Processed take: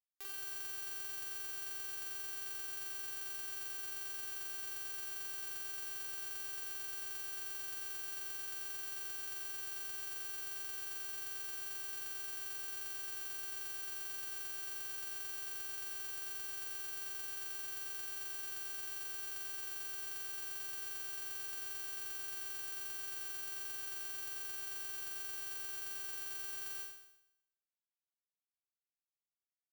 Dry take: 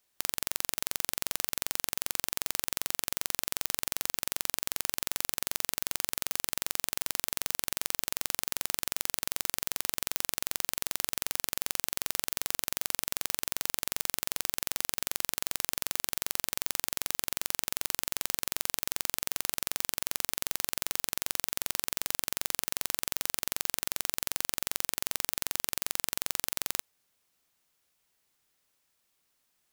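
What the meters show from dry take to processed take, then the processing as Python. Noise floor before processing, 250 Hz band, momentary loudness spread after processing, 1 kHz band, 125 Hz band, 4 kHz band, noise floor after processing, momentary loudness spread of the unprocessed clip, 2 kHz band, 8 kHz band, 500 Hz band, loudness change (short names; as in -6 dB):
-76 dBFS, under -15 dB, 0 LU, -14.0 dB, under -25 dB, -14.0 dB, under -85 dBFS, 0 LU, -9.0 dB, -14.0 dB, -14.5 dB, -9.0 dB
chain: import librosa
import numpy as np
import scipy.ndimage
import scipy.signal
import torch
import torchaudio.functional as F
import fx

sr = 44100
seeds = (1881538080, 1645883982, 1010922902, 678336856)

y = fx.fuzz(x, sr, gain_db=30.0, gate_db=-37.0)
y = fx.comb_fb(y, sr, f0_hz=390.0, decay_s=0.82, harmonics='all', damping=0.0, mix_pct=100)
y = F.gain(torch.from_numpy(y), 16.0).numpy()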